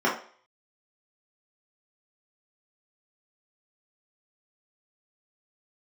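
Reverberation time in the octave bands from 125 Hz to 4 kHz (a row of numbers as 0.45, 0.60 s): 0.30, 0.40, 0.45, 0.50, 0.45, 0.45 s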